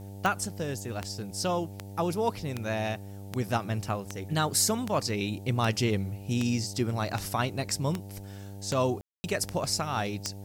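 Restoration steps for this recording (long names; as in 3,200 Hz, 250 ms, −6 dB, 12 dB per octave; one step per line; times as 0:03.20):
click removal
hum removal 98.9 Hz, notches 9
ambience match 0:09.01–0:09.24
downward expander −34 dBFS, range −21 dB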